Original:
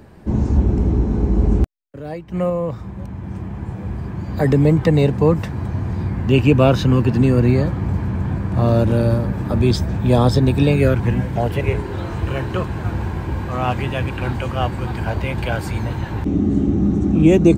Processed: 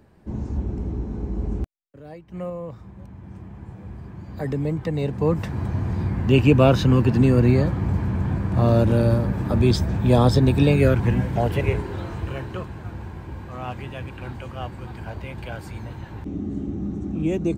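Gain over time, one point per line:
4.94 s -11 dB
5.55 s -2 dB
11.61 s -2 dB
12.85 s -11.5 dB

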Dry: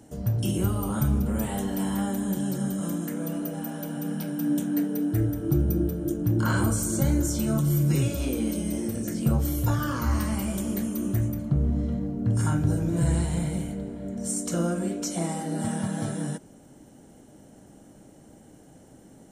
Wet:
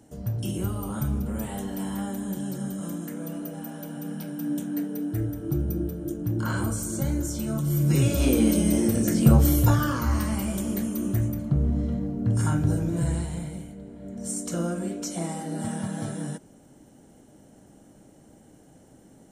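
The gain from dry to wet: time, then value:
7.59 s -3.5 dB
8.28 s +7 dB
9.53 s +7 dB
10.05 s +0.5 dB
12.77 s +0.5 dB
13.74 s -9 dB
14.29 s -2 dB

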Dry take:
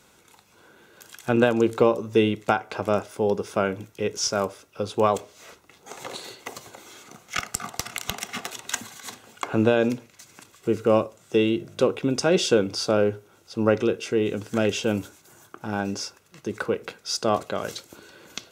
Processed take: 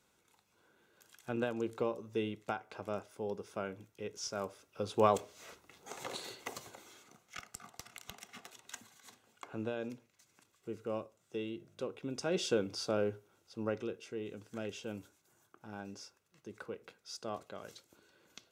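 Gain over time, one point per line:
4.23 s -16 dB
5.06 s -6.5 dB
6.61 s -6.5 dB
7.35 s -19 dB
11.89 s -19 dB
12.47 s -12 dB
13.11 s -12 dB
14.09 s -18.5 dB

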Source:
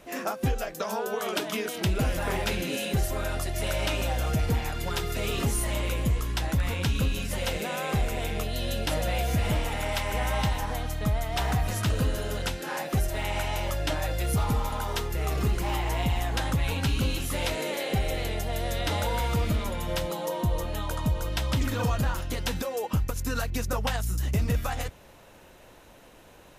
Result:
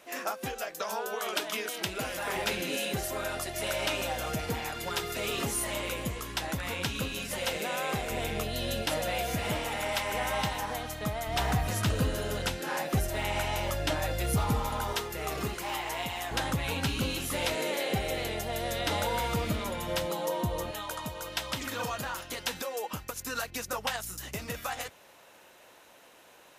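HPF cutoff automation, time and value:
HPF 6 dB/oct
720 Hz
from 2.36 s 340 Hz
from 8.1 s 110 Hz
from 8.82 s 280 Hz
from 11.27 s 82 Hz
from 14.93 s 330 Hz
from 15.54 s 730 Hz
from 16.31 s 180 Hz
from 20.71 s 700 Hz

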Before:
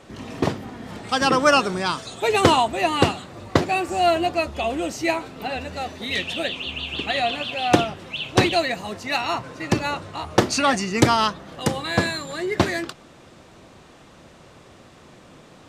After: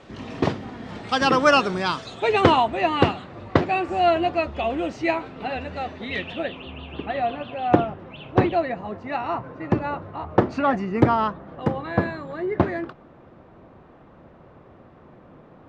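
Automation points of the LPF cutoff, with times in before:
1.94 s 4800 Hz
2.51 s 2800 Hz
5.85 s 2800 Hz
6.78 s 1300 Hz

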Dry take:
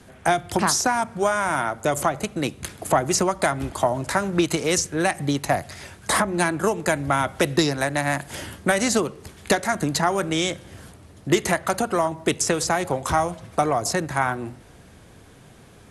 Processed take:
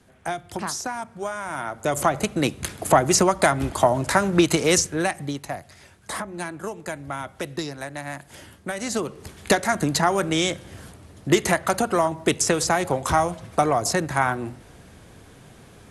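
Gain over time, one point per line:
1.46 s -8.5 dB
2.16 s +3 dB
4.75 s +3 dB
5.54 s -10 dB
8.73 s -10 dB
9.24 s +1 dB

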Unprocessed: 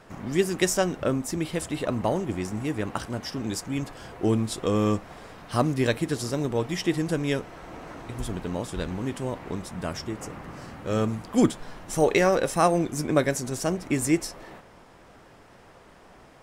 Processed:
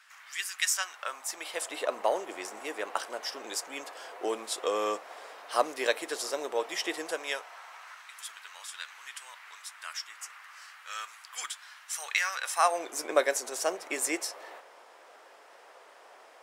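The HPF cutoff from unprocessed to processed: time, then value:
HPF 24 dB/oct
0.62 s 1400 Hz
1.74 s 480 Hz
7.02 s 480 Hz
8.05 s 1300 Hz
12.35 s 1300 Hz
12.91 s 470 Hz

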